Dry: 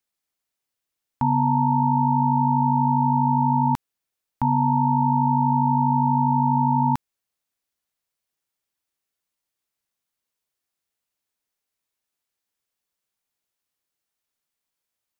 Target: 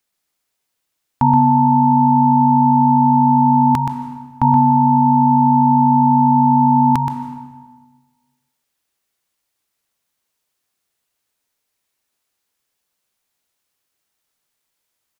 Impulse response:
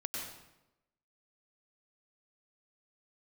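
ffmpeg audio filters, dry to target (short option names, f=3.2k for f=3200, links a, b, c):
-filter_complex "[0:a]aecho=1:1:125:0.473,asplit=2[a][b];[1:a]atrim=start_sample=2205,asetrate=27783,aresample=44100,lowshelf=f=140:g=-10.5[c];[b][c]afir=irnorm=-1:irlink=0,volume=-11dB[d];[a][d]amix=inputs=2:normalize=0,volume=6dB"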